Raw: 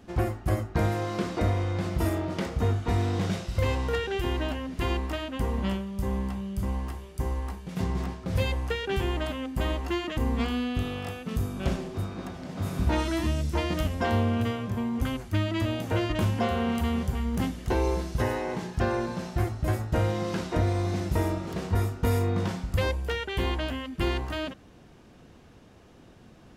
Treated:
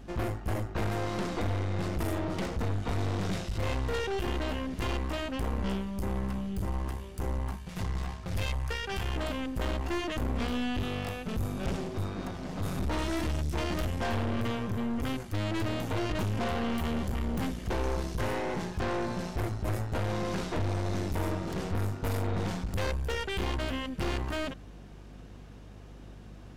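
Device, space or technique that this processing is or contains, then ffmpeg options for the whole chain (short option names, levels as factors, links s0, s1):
valve amplifier with mains hum: -filter_complex "[0:a]asettb=1/sr,asplit=3[s0][s1][s2];[s0]atrim=end=7.564[s3];[s1]atrim=start=7.56:end=9.16,asetpts=PTS-STARTPTS,afade=t=in:d=0.004:c=qsin,afade=t=out:st=1.596:d=0.004:c=qsin,equalizer=f=300:w=0.9:g=-12.5[s4];[s2]atrim=start=9.156[s5];[s3][s4]acrossfade=d=0.004:c1=hsin:c2=qsin[s6];[s6][s5]acrossfade=d=0.004:c1=qsin:c2=hsin,aeval=exprs='(tanh(39.8*val(0)+0.6)-tanh(0.6))/39.8':c=same,aeval=exprs='val(0)+0.00282*(sin(2*PI*50*n/s)+sin(2*PI*2*50*n/s)/2+sin(2*PI*3*50*n/s)/3+sin(2*PI*4*50*n/s)/4+sin(2*PI*5*50*n/s)/5)':c=same,volume=1.5"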